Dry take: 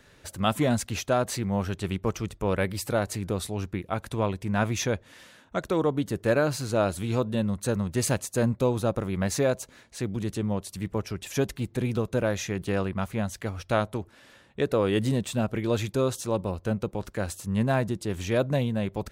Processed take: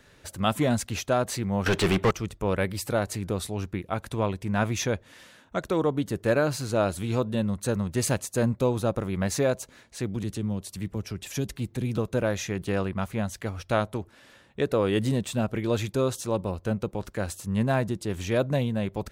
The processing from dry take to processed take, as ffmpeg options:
-filter_complex "[0:a]asettb=1/sr,asplit=3[s0][s1][s2];[s0]atrim=end=1.664[s3];[s1]atrim=start=1.66:end=2.11,asetpts=PTS-STARTPTS,afade=t=in:d=0.004:c=qsin,afade=t=out:st=0.446:d=0.004:c=qsin,asplit=2[s4][s5];[s5]highpass=f=720:p=1,volume=35.5,asoftclip=type=tanh:threshold=0.224[s6];[s4][s6]amix=inputs=2:normalize=0,lowpass=f=2600:p=1,volume=0.501[s7];[s2]atrim=start=2.106[s8];[s3][s7]acrossfade=d=0.004:c1=hsin:c2=qsin[s9];[s9][s8]acrossfade=d=0.004:c1=qsin:c2=hsin,asettb=1/sr,asplit=3[s10][s11][s12];[s10]atrim=end=10.234[s13];[s11]atrim=start=10.23:end=11.98,asetpts=PTS-STARTPTS,afade=t=in:d=0.004:c=qsin,afade=t=out:st=1.746:d=0.004:c=qsin,acrossover=split=320|3000[s14][s15][s16];[s15]acompressor=threshold=0.00891:ratio=4:attack=3.2:release=140:knee=2.83:detection=peak[s17];[s14][s17][s16]amix=inputs=3:normalize=0[s18];[s12]atrim=start=11.976[s19];[s13][s18]acrossfade=d=0.004:c1=hsin:c2=qsin[s20];[s20][s19]acrossfade=d=0.004:c1=qsin:c2=hsin"

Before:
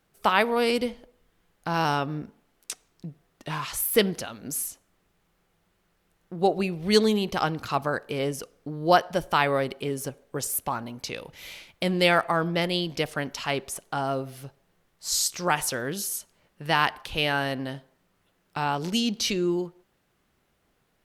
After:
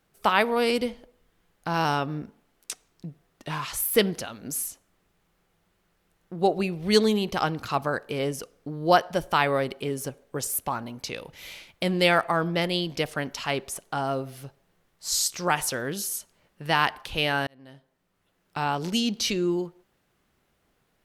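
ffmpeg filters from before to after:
-filter_complex "[0:a]asplit=2[s0][s1];[s0]atrim=end=17.47,asetpts=PTS-STARTPTS,afade=t=out:st=17.466:d=0.004:c=hsin[s2];[s1]atrim=start=17.47,asetpts=PTS-STARTPTS,afade=t=in:d=1.14[s3];[s2][s3]concat=n=2:v=0:a=1"

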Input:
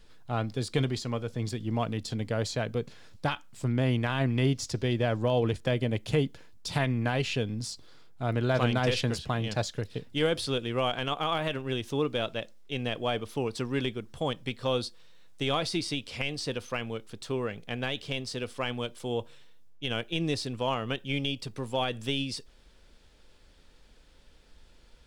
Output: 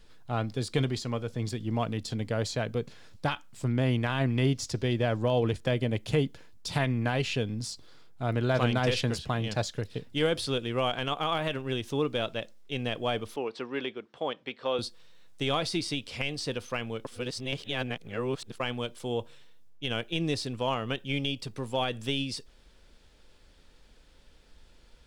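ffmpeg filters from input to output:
-filter_complex "[0:a]asettb=1/sr,asplit=3[s0][s1][s2];[s0]atrim=end=13.364[s3];[s1]atrim=start=13.36:end=14.79,asetpts=PTS-STARTPTS,afade=t=in:d=0.004:c=qsin,afade=t=out:st=1.426:d=0.004:c=qsin,highpass=340,lowpass=3300[s4];[s2]atrim=start=14.786[s5];[s3][s4]acrossfade=d=0.004:c1=hsin:c2=qsin[s6];[s6][s5]acrossfade=d=0.004:c1=qsin:c2=hsin,asplit=3[s7][s8][s9];[s7]atrim=end=17.052[s10];[s8]atrim=start=17.048:end=18.602,asetpts=PTS-STARTPTS,areverse[s11];[s9]atrim=start=18.598[s12];[s10][s11]acrossfade=d=0.004:c1=hsin:c2=hsin[s13];[s13][s12]acrossfade=d=0.004:c1=hsin:c2=hsin"

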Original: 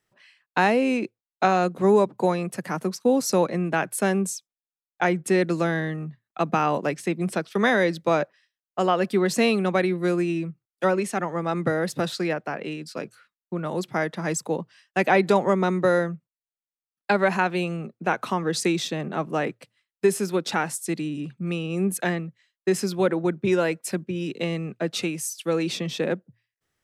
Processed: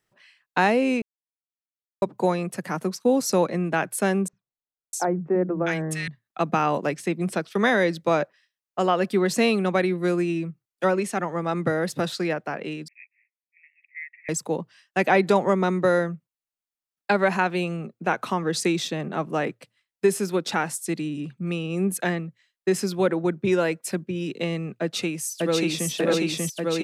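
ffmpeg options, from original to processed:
-filter_complex "[0:a]asettb=1/sr,asplit=3[s0][s1][s2];[s0]atrim=end=4.284[s3];[s1]atrim=start=4.28:end=6.08,asetpts=PTS-STARTPTS,afade=t=in:d=0.004:c=qsin,afade=t=out:st=1.796:d=0.004:c=qsin,acrossover=split=210|1300[s4][s5][s6];[s4]adelay=50[s7];[s6]adelay=650[s8];[s7][s5][s8]amix=inputs=3:normalize=0,atrim=end_sample=79380[s9];[s2]atrim=start=6.076[s10];[s3][s9]acrossfade=d=0.004:c1=hsin:c2=qsin[s11];[s11][s10]acrossfade=d=0.004:c1=qsin:c2=hsin,asettb=1/sr,asplit=3[s12][s13][s14];[s12]atrim=end=12.884[s15];[s13]atrim=start=12.88:end=14.29,asetpts=PTS-STARTPTS,afade=t=in:d=0.004:c=qsin,afade=t=out:st=1.406:d=0.004:c=qsin,asuperpass=centerf=2200:order=12:qfactor=3[s16];[s14]atrim=start=14.286[s17];[s15][s16]acrossfade=d=0.004:c1=hsin:c2=qsin[s18];[s18][s17]acrossfade=d=0.004:c1=qsin:c2=hsin,asplit=2[s19][s20];[s20]afade=t=in:st=24.81:d=0.01,afade=t=out:st=25.9:d=0.01,aecho=0:1:590|1180|1770|2360|2950|3540|4130|4720|5310|5900|6490|7080:1|0.8|0.64|0.512|0.4096|0.32768|0.262144|0.209715|0.167772|0.134218|0.107374|0.0858993[s21];[s19][s21]amix=inputs=2:normalize=0,asplit=3[s22][s23][s24];[s22]atrim=end=1.02,asetpts=PTS-STARTPTS,afade=t=out:st=1.016:d=0.004:c=hsin[s25];[s23]atrim=start=1.02:end=2.02,asetpts=PTS-STARTPTS,volume=0[s26];[s24]atrim=start=2.02,asetpts=PTS-STARTPTS,afade=t=in:d=0.004:c=hsin[s27];[s25][s26][s27]concat=n=3:v=0:a=1"

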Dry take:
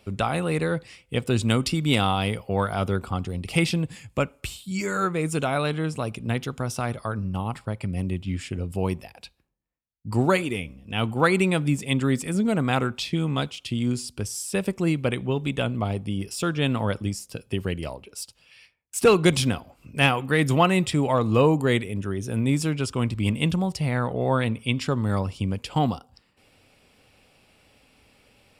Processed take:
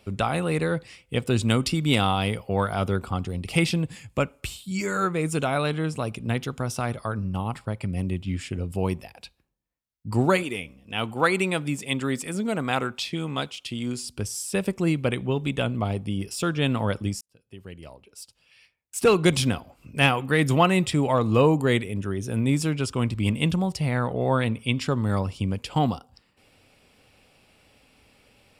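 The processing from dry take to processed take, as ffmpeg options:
-filter_complex "[0:a]asettb=1/sr,asplit=3[s0][s1][s2];[s0]atrim=end=10.434[s3];[s1]atrim=start=10.43:end=14.07,asetpts=PTS-STARTPTS,afade=t=in:d=0.004:c=qsin,afade=t=out:st=3.636:d=0.004:c=qsin,lowshelf=f=230:g=-9.5[s4];[s2]atrim=start=14.066[s5];[s3][s4]acrossfade=d=0.004:c1=hsin:c2=qsin[s6];[s6][s5]acrossfade=d=0.004:c1=qsin:c2=hsin,asplit=2[s7][s8];[s7]atrim=end=17.21,asetpts=PTS-STARTPTS,afade=t=out:st=17.206:d=0.004:c=hsin[s9];[s8]atrim=start=17.21,asetpts=PTS-STARTPTS,afade=t=in:d=2.28[s10];[s9][s10]concat=n=2:v=0:a=1"

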